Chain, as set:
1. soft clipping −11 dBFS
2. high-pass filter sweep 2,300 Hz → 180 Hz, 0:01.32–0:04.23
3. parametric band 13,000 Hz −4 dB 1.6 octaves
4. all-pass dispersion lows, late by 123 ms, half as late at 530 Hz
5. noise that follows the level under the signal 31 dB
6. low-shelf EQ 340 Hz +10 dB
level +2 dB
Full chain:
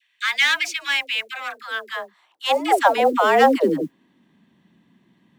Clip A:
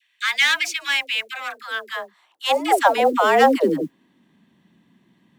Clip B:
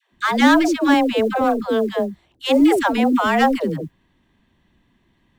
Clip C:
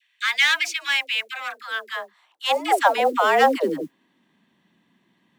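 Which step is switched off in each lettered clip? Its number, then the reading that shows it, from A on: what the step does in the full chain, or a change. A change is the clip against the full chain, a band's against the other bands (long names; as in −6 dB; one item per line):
3, 8 kHz band +2.5 dB
2, 250 Hz band +11.5 dB
6, 250 Hz band −5.5 dB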